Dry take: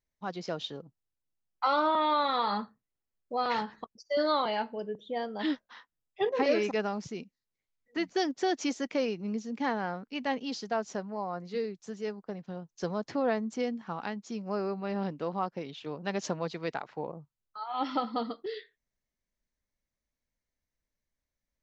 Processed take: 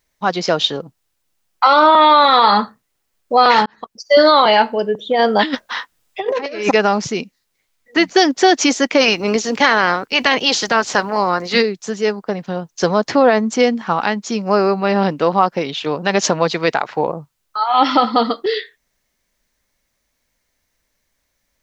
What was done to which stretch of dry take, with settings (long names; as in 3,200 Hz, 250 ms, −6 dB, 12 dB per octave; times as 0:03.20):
0:03.66–0:04.13: fade in
0:05.11–0:06.71: compressor whose output falls as the input rises −34 dBFS, ratio −0.5
0:09.00–0:11.61: ceiling on every frequency bin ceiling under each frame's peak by 15 dB
whole clip: low-shelf EQ 400 Hz −8 dB; boost into a limiter +22.5 dB; level −1 dB